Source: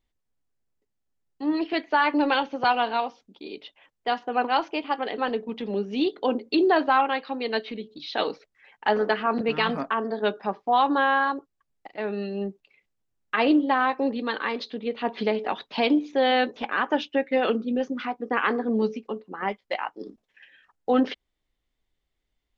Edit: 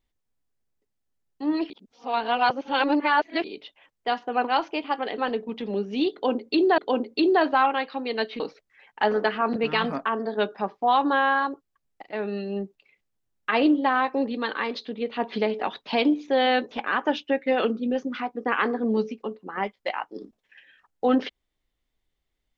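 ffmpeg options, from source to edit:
-filter_complex "[0:a]asplit=5[a][b][c][d][e];[a]atrim=end=1.702[f];[b]atrim=start=1.698:end=3.442,asetpts=PTS-STARTPTS,areverse[g];[c]atrim=start=3.438:end=6.782[h];[d]atrim=start=6.128:end=7.752[i];[e]atrim=start=8.248[j];[f][g]acrossfade=d=0.004:c1=hsin:c2=hsin[k];[k][h]acrossfade=d=0.004:c1=hsin:c2=hsin[l];[l][i]acrossfade=d=0.004:c1=hsin:c2=hsin[m];[m][j]acrossfade=d=0.004:c1=hsin:c2=hsin"

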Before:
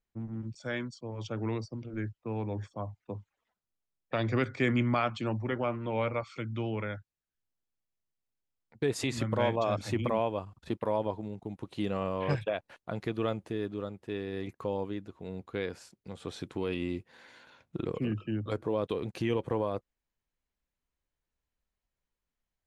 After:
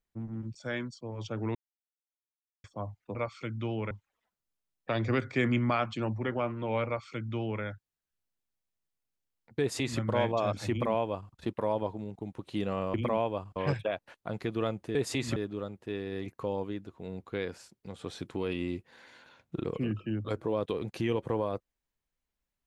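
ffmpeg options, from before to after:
-filter_complex "[0:a]asplit=9[a][b][c][d][e][f][g][h][i];[a]atrim=end=1.55,asetpts=PTS-STARTPTS,afade=t=out:st=1.546:d=0.004:c=hsin[j];[b]atrim=start=1.55:end=2.64,asetpts=PTS-STARTPTS,volume=0[k];[c]atrim=start=2.64:end=3.152,asetpts=PTS-STARTPTS,afade=t=in:d=0.004:c=hsin[l];[d]atrim=start=6.098:end=6.862[m];[e]atrim=start=3.148:end=12.182[n];[f]atrim=start=9.948:end=10.572[o];[g]atrim=start=12.178:end=13.572[p];[h]atrim=start=8.838:end=9.252[q];[i]atrim=start=13.568[r];[j][k][l]concat=n=3:v=0:a=1[s];[s][m]acrossfade=d=0.004:c1=hsin:c2=hsin[t];[t][n]acrossfade=d=0.004:c1=hsin:c2=hsin[u];[u][o]acrossfade=d=0.004:c1=hsin:c2=hsin[v];[v][p]acrossfade=d=0.004:c1=hsin:c2=hsin[w];[w][q]acrossfade=d=0.004:c1=hsin:c2=hsin[x];[x][r]acrossfade=d=0.004:c1=hsin:c2=hsin"

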